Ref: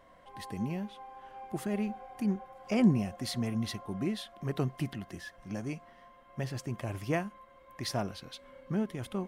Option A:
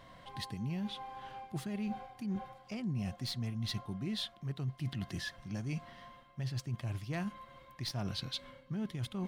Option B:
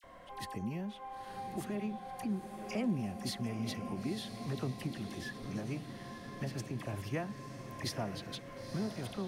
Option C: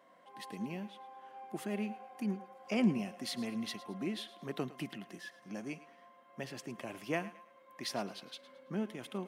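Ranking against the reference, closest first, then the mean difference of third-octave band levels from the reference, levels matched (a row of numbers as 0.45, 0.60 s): C, A, B; 3.5, 5.0, 9.0 dB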